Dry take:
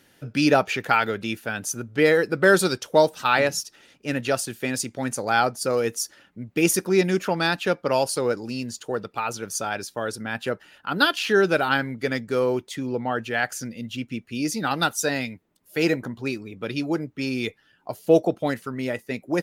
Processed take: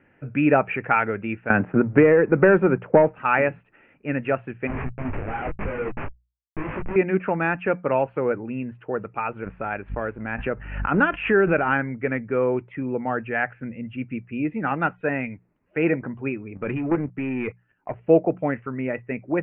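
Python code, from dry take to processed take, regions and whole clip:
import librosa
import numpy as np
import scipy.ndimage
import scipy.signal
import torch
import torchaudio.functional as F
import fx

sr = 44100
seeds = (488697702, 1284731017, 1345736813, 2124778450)

y = fx.chain(x, sr, fx.lowpass(hz=1200.0, slope=6),
    fx.leveller(passes=1),
    fx.band_squash(depth_pct=100), at=(1.5, 3.19))
y = fx.chain(y, sr, fx.highpass(hz=55.0, slope=12),
    fx.schmitt(flips_db=-26.5),
    fx.detune_double(cents=35), at=(4.67, 6.96))
y = fx.law_mismatch(y, sr, coded='A', at=(9.42, 11.75), fade=0.02)
y = fx.dmg_buzz(y, sr, base_hz=50.0, harmonics=5, level_db=-57.0, tilt_db=-8, odd_only=False, at=(9.42, 11.75), fade=0.02)
y = fx.pre_swell(y, sr, db_per_s=62.0, at=(9.42, 11.75), fade=0.02)
y = fx.chain(y, sr, fx.leveller(passes=2),
    fx.level_steps(step_db=9), at=(16.55, 18.01))
y = scipy.signal.sosfilt(scipy.signal.butter(12, 2600.0, 'lowpass', fs=sr, output='sos'), y)
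y = fx.low_shelf(y, sr, hz=140.0, db=4.5)
y = fx.hum_notches(y, sr, base_hz=60, count=3)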